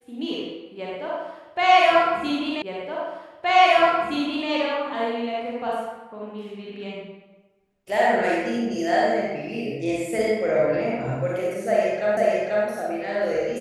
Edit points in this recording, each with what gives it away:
0:02.62: the same again, the last 1.87 s
0:12.17: the same again, the last 0.49 s

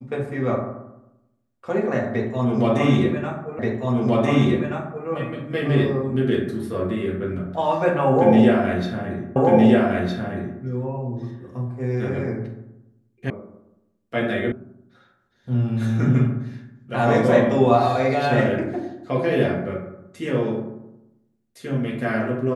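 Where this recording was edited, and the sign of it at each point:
0:03.59: the same again, the last 1.48 s
0:09.36: the same again, the last 1.26 s
0:13.30: cut off before it has died away
0:14.52: cut off before it has died away

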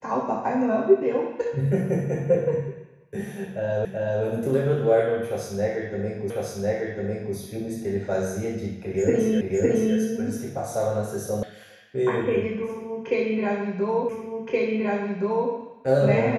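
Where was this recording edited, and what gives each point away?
0:03.85: the same again, the last 0.38 s
0:06.30: the same again, the last 1.05 s
0:09.41: the same again, the last 0.56 s
0:11.43: cut off before it has died away
0:14.09: the same again, the last 1.42 s

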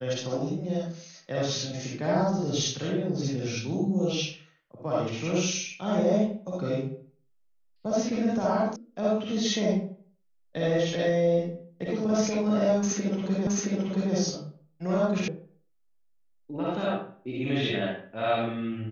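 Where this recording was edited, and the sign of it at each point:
0:08.76: cut off before it has died away
0:13.47: the same again, the last 0.67 s
0:15.28: cut off before it has died away

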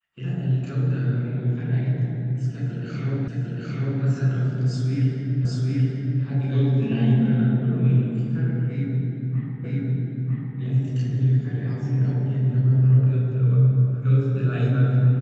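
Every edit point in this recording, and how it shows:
0:03.28: the same again, the last 0.75 s
0:05.45: the same again, the last 0.78 s
0:09.64: the same again, the last 0.95 s

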